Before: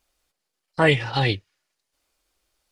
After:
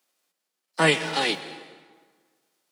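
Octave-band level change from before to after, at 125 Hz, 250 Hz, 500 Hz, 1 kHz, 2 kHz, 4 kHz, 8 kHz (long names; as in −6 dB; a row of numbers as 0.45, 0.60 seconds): −10.0, −3.0, −3.0, −1.0, −0.5, +1.5, +12.0 decibels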